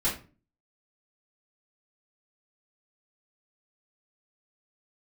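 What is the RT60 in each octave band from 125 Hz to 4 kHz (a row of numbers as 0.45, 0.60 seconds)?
0.55, 0.50, 0.40, 0.35, 0.30, 0.25 seconds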